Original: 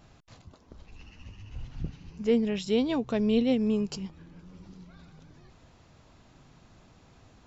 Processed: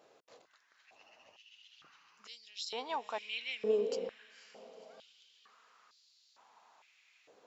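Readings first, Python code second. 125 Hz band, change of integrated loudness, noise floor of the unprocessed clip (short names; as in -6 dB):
under -25 dB, -9.0 dB, -59 dBFS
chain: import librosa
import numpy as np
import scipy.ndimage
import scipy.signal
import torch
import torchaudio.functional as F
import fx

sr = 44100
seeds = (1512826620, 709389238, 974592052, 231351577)

y = fx.echo_diffused(x, sr, ms=516, feedback_pct=49, wet_db=-12.5)
y = fx.filter_held_highpass(y, sr, hz=2.2, low_hz=470.0, high_hz=4400.0)
y = y * librosa.db_to_amplitude(-7.0)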